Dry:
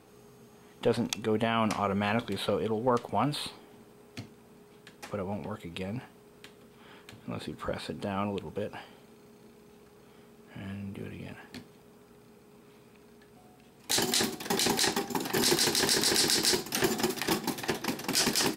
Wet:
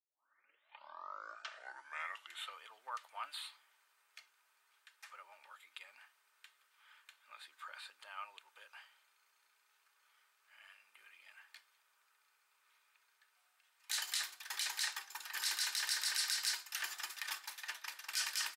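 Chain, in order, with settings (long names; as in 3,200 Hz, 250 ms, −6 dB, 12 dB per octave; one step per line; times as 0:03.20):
turntable start at the beginning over 2.61 s
four-pole ladder high-pass 1,100 Hz, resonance 30%
comb filter 3.3 ms, depth 36%
level −4 dB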